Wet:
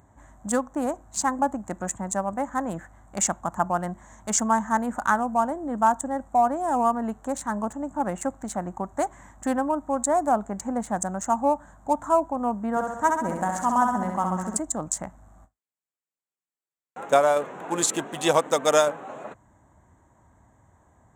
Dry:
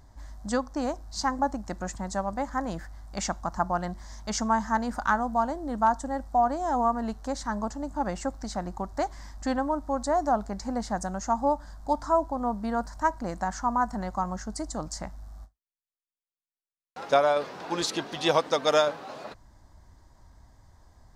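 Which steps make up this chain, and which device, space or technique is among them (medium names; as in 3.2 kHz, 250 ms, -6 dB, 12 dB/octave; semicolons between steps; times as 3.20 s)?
local Wiener filter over 9 samples; 12.70–14.59 s: flutter echo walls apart 11.3 m, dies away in 0.89 s; budget condenser microphone (high-pass 110 Hz 12 dB/octave; resonant high shelf 6.1 kHz +8 dB, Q 3); trim +3 dB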